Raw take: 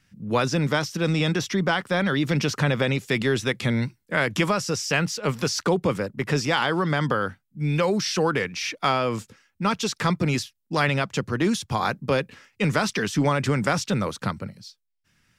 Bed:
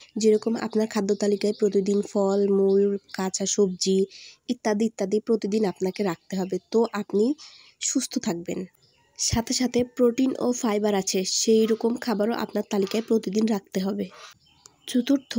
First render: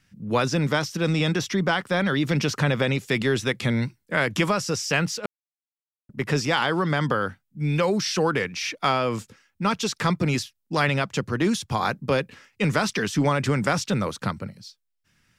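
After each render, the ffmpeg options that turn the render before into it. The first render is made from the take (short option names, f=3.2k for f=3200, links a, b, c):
-filter_complex "[0:a]asplit=3[a][b][c];[a]atrim=end=5.26,asetpts=PTS-STARTPTS,afade=t=out:st=5.256:d=0.004:c=hsin[d];[b]atrim=start=5.26:end=6.09,asetpts=PTS-STARTPTS,volume=0[e];[c]atrim=start=6.09,asetpts=PTS-STARTPTS,afade=t=in:d=0.004:c=hsin[f];[d][e][f]concat=n=3:v=0:a=1"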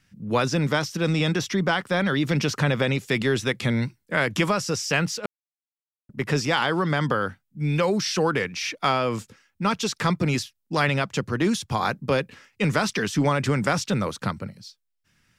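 -af anull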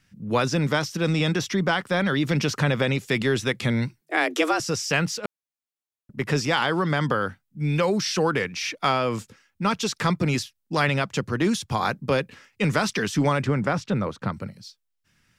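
-filter_complex "[0:a]asettb=1/sr,asplit=3[a][b][c];[a]atrim=end=4.014[d];[b]atrim=start=4.01:end=4.6,asetpts=PTS-STARTPTS,afade=t=in:d=0.004:c=qsin,afade=t=out:st=0.586:d=0.004:c=qsin,afreqshift=150[e];[c]atrim=start=4.596[f];[d][e]acrossfade=d=0.004:c1=hsin:c2=qsin[g];[g][f]acrossfade=d=0.004:c1=qsin:c2=hsin,asplit=3[h][i][j];[h]afade=t=out:st=13.43:d=0.02[k];[i]lowpass=f=1.6k:p=1,afade=t=in:st=13.43:d=0.02,afade=t=out:st=14.32:d=0.02[l];[j]afade=t=in:st=14.32:d=0.02[m];[k][l][m]amix=inputs=3:normalize=0"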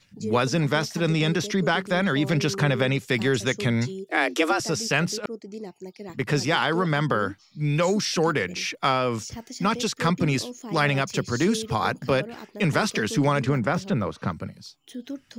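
-filter_complex "[1:a]volume=-13.5dB[a];[0:a][a]amix=inputs=2:normalize=0"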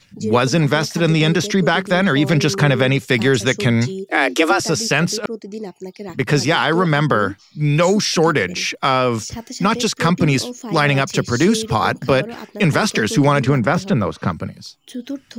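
-af "volume=7.5dB,alimiter=limit=-3dB:level=0:latency=1"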